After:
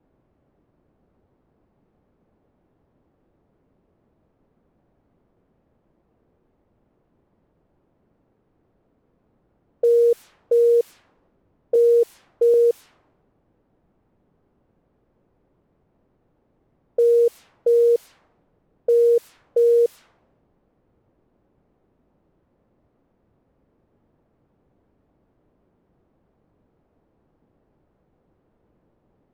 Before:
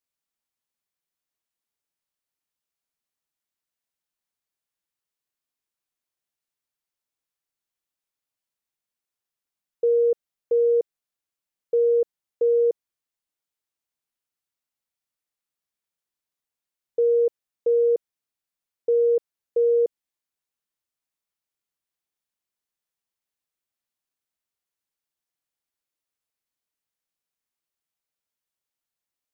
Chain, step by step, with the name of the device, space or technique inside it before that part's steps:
0:11.75–0:12.54: comb filter 2.8 ms, depth 90%
cassette deck with a dynamic noise filter (white noise bed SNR 23 dB; low-pass that shuts in the quiet parts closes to 360 Hz, open at −21.5 dBFS)
level +3.5 dB

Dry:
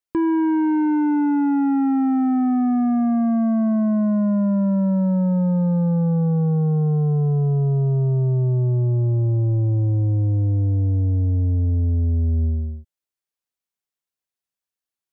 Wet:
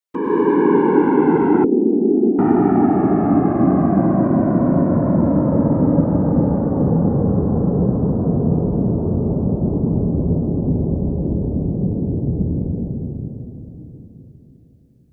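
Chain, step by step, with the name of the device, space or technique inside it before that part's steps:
whispering ghost (random phases in short frames; high-pass filter 280 Hz 6 dB per octave; convolution reverb RT60 3.7 s, pre-delay 95 ms, DRR −7 dB)
0:01.64–0:02.39: elliptic band-pass filter 210–550 Hz, stop band 70 dB

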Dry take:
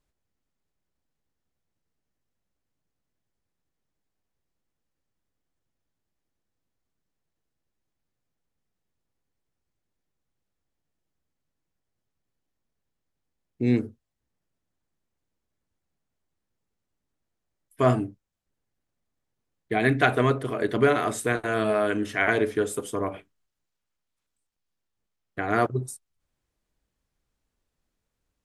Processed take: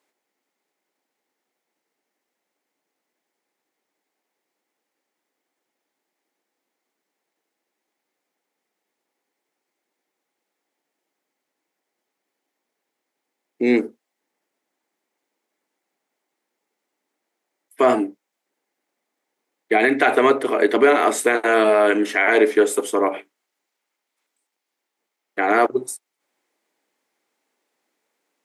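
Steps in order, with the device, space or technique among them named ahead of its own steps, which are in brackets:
laptop speaker (high-pass filter 300 Hz 24 dB per octave; parametric band 840 Hz +5 dB 0.31 octaves; parametric band 2,100 Hz +6.5 dB 0.37 octaves; brickwall limiter −14.5 dBFS, peak gain reduction 9.5 dB)
low-shelf EQ 450 Hz +4 dB
level +8 dB

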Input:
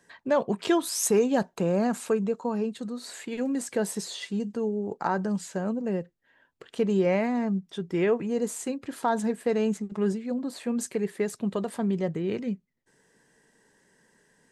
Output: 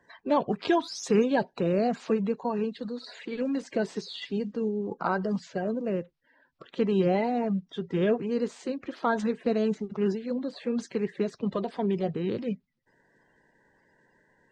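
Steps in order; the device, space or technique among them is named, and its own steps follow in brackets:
clip after many re-uploads (low-pass filter 5,200 Hz 24 dB per octave; spectral magnitudes quantised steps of 30 dB)

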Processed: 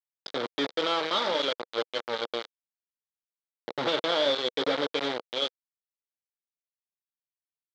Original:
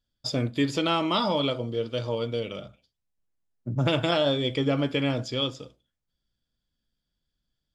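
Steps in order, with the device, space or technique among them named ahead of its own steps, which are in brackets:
hand-held game console (bit reduction 4 bits; loudspeaker in its box 450–4,000 Hz, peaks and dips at 490 Hz +4 dB, 710 Hz −5 dB, 1,000 Hz −4 dB, 1,800 Hz −4 dB, 2,600 Hz −10 dB, 3,700 Hz +4 dB)

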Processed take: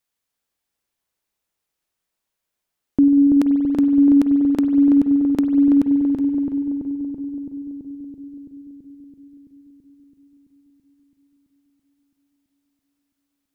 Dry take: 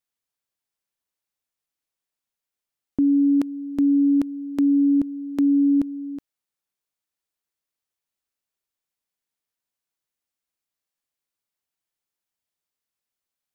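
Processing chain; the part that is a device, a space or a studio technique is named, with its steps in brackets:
dub delay into a spring reverb (feedback echo with a low-pass in the loop 332 ms, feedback 76%, low-pass 930 Hz, level −3 dB; spring reverb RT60 2.9 s, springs 47 ms, chirp 35 ms, DRR 6 dB)
level +5.5 dB

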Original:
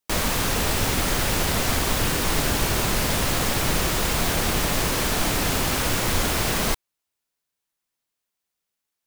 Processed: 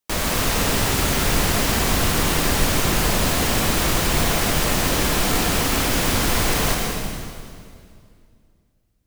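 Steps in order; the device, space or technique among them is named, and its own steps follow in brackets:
stairwell (convolution reverb RT60 2.3 s, pre-delay 90 ms, DRR 0.5 dB)

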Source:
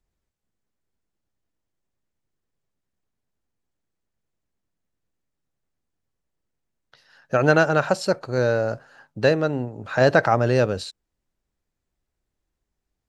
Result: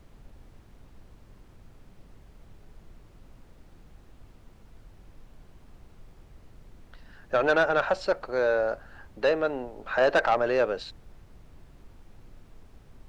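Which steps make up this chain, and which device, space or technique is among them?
aircraft cabin announcement (band-pass filter 440–3,200 Hz; soft clipping −15 dBFS, distortion −12 dB; brown noise bed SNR 17 dB)

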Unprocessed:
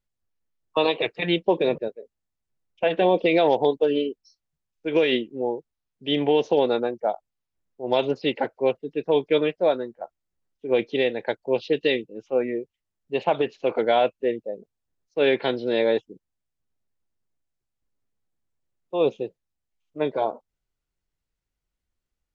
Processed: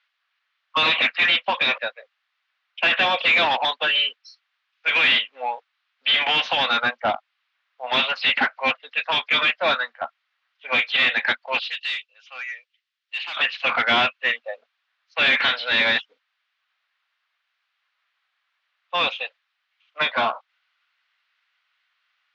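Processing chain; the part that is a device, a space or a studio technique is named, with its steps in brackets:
inverse Chebyshev high-pass filter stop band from 390 Hz, stop band 50 dB
overdrive pedal into a guitar cabinet (mid-hump overdrive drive 29 dB, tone 4,300 Hz, clips at −12 dBFS; loudspeaker in its box 100–3,800 Hz, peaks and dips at 170 Hz −5 dB, 240 Hz +10 dB, 540 Hz +4 dB, 910 Hz −7 dB)
0:11.59–0:13.37: first difference
level +3 dB

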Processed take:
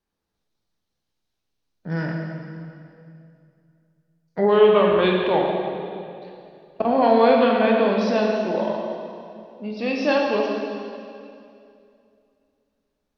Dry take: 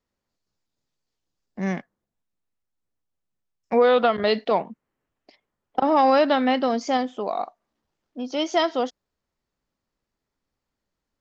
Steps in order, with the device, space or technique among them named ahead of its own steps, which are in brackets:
slowed and reverbed (speed change −15%; convolution reverb RT60 2.6 s, pre-delay 14 ms, DRR −1 dB)
level −1 dB

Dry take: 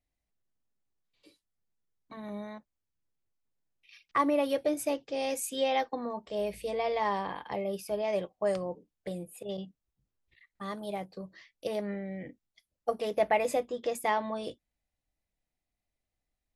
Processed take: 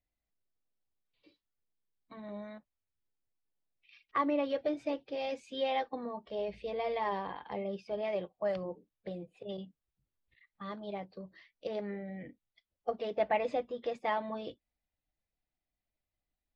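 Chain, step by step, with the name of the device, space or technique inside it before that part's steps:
clip after many re-uploads (low-pass filter 4,400 Hz 24 dB per octave; spectral magnitudes quantised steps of 15 dB)
level −3.5 dB

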